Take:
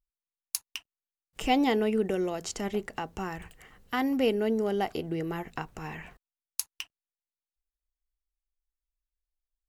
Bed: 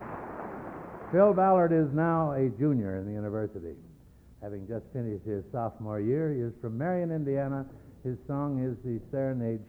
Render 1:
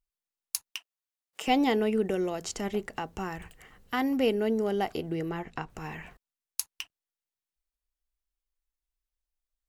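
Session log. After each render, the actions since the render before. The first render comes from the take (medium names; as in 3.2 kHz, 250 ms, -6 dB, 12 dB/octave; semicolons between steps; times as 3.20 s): 0.71–1.48 s: high-pass 490 Hz; 5.29–5.70 s: distance through air 54 m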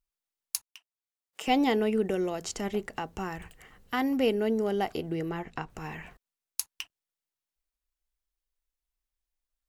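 0.62–1.56 s: fade in, from -20 dB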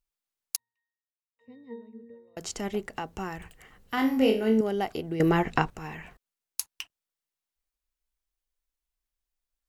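0.56–2.37 s: pitch-class resonator A#, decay 0.65 s; 3.95–4.61 s: flutter echo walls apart 3.9 m, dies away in 0.35 s; 5.20–5.70 s: gain +11.5 dB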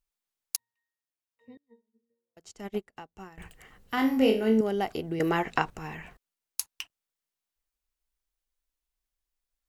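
1.57–3.38 s: upward expansion 2.5:1, over -48 dBFS; 5.19–5.68 s: bass shelf 260 Hz -11 dB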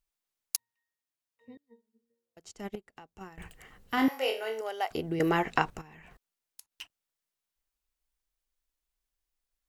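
2.75–3.21 s: compression 2.5:1, threshold -47 dBFS; 4.08–4.91 s: high-pass 560 Hz 24 dB/octave; 5.81–6.81 s: compression 20:1, threshold -48 dBFS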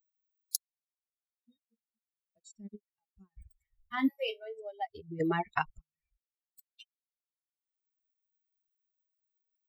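expander on every frequency bin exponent 3; upward compressor, threshold -46 dBFS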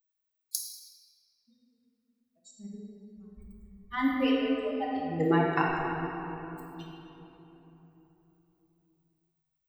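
simulated room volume 220 m³, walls hard, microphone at 0.75 m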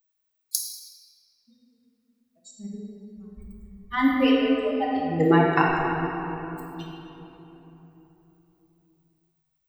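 trim +6.5 dB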